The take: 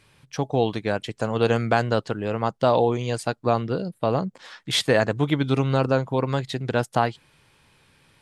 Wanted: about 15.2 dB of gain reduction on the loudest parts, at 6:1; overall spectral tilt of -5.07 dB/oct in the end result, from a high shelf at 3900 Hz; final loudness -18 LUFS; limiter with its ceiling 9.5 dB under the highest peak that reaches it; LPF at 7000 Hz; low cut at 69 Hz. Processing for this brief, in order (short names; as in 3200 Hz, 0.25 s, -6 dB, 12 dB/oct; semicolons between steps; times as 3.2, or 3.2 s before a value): HPF 69 Hz; LPF 7000 Hz; high shelf 3900 Hz -4.5 dB; compressor 6:1, threshold -32 dBFS; gain +21.5 dB; limiter -5 dBFS